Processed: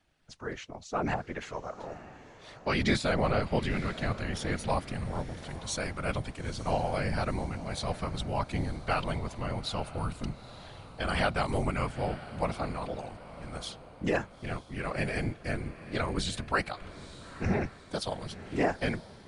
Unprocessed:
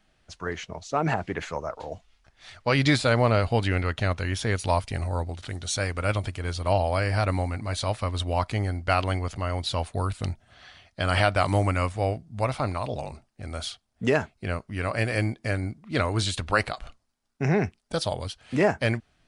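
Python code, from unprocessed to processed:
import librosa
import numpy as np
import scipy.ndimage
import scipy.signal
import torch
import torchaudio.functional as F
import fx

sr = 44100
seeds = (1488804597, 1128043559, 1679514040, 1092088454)

y = fx.whisperise(x, sr, seeds[0])
y = fx.echo_diffused(y, sr, ms=909, feedback_pct=46, wet_db=-15.0)
y = F.gain(torch.from_numpy(y), -6.0).numpy()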